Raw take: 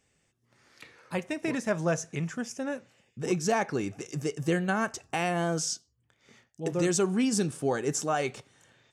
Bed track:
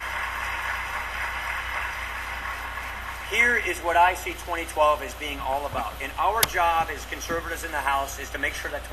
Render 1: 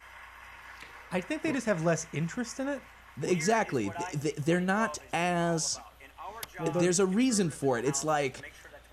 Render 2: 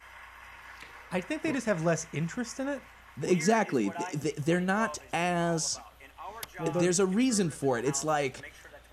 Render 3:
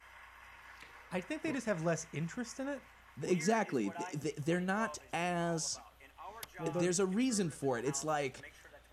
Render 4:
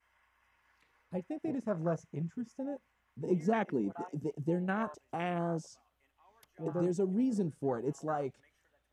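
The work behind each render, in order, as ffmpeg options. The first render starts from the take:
-filter_complex "[1:a]volume=0.106[s0];[0:a][s0]amix=inputs=2:normalize=0"
-filter_complex "[0:a]asettb=1/sr,asplit=3[s0][s1][s2];[s0]atrim=end=3.294[s3];[s1]atrim=start=3.29:end=4.24,asetpts=PTS-STARTPTS,afade=t=in:d=0.004:c=qsin,afade=t=out:st=0.946:d=0.004:c=qsin,highpass=f=200:t=q:w=1.7[s4];[s2]atrim=start=4.236[s5];[s3][s4]acrossfade=d=0.004:c1=hsin:c2=qsin[s6];[s6][s5]acrossfade=d=0.004:c1=qsin:c2=hsin"
-af "volume=0.473"
-af "afwtdn=0.0126,equalizer=f=230:t=o:w=1.7:g=2.5"

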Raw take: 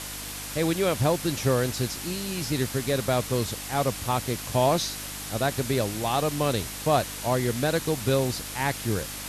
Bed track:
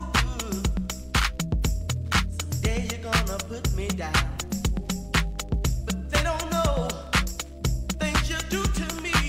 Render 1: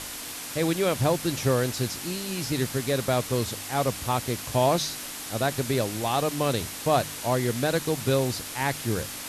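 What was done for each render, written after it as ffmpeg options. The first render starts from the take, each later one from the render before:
-af "bandreject=f=50:t=h:w=4,bandreject=f=100:t=h:w=4,bandreject=f=150:t=h:w=4,bandreject=f=200:t=h:w=4"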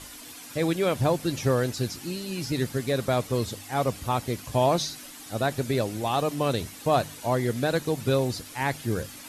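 -af "afftdn=nr=10:nf=-37"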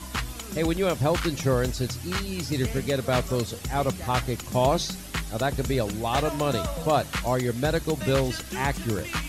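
-filter_complex "[1:a]volume=0.422[s0];[0:a][s0]amix=inputs=2:normalize=0"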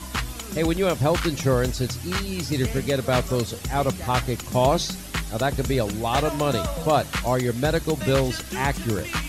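-af "volume=1.33"

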